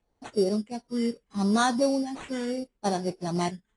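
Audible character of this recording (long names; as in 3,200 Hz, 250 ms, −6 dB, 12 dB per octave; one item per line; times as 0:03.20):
tremolo triangle 0.86 Hz, depth 40%
phaser sweep stages 8, 0.73 Hz, lowest notch 720–3,900 Hz
aliases and images of a low sample rate 5,100 Hz, jitter 0%
AAC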